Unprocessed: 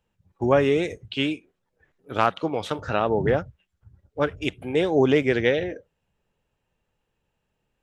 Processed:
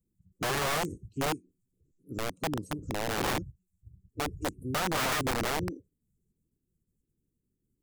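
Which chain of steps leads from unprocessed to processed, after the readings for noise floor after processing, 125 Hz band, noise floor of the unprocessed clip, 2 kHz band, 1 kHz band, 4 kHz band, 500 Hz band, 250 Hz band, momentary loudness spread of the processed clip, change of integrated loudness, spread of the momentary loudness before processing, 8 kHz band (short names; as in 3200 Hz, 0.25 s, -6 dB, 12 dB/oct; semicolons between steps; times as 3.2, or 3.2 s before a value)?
-82 dBFS, -7.0 dB, -78 dBFS, -5.0 dB, -5.0 dB, -2.5 dB, -13.5 dB, -10.0 dB, 10 LU, -8.5 dB, 13 LU, n/a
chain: bin magnitudes rounded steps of 30 dB; elliptic band-stop 330–7400 Hz, stop band 40 dB; wrapped overs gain 24.5 dB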